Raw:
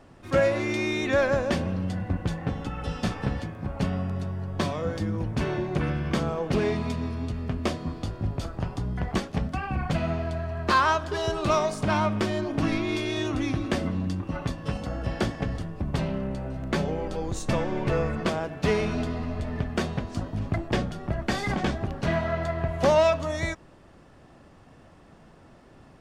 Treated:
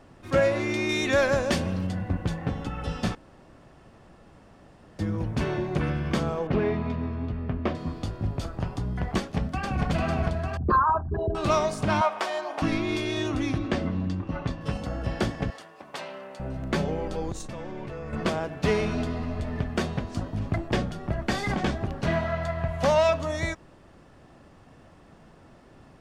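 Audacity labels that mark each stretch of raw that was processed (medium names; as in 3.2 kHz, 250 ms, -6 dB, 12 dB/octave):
0.890000	1.870000	treble shelf 3.5 kHz +9 dB
3.150000	4.990000	room tone
6.470000	7.750000	low-pass 2.3 kHz
9.180000	9.830000	echo throw 450 ms, feedback 65%, level -1.5 dB
10.570000	11.350000	resonances exaggerated exponent 3
12.010000	12.620000	resonant high-pass 770 Hz, resonance Q 2.2
13.580000	14.610000	distance through air 83 m
15.500000	16.400000	high-pass 670 Hz
17.320000	18.130000	level held to a coarse grid steps of 18 dB
22.250000	23.090000	peaking EQ 360 Hz -11 dB 0.58 oct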